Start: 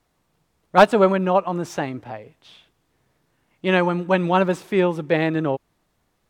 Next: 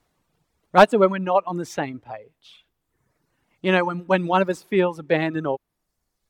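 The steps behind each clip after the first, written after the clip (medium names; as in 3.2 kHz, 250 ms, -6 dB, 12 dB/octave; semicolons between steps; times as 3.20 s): reverb removal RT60 1.2 s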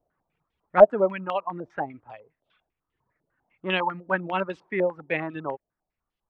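step-sequenced low-pass 10 Hz 620–3000 Hz; trim -9.5 dB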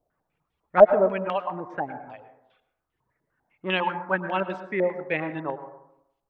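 reverberation RT60 0.80 s, pre-delay 93 ms, DRR 10 dB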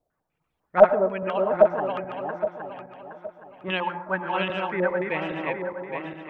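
backward echo that repeats 409 ms, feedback 55%, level -2 dB; trim -2 dB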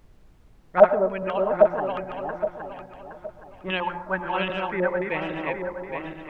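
added noise brown -51 dBFS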